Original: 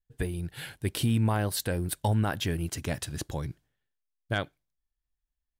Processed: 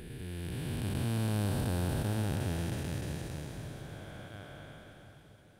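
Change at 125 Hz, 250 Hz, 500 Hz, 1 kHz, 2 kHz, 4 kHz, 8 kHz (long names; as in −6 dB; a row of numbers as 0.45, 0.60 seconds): −3.5, −4.0, −5.5, −8.5, −8.0, −8.0, −8.0 decibels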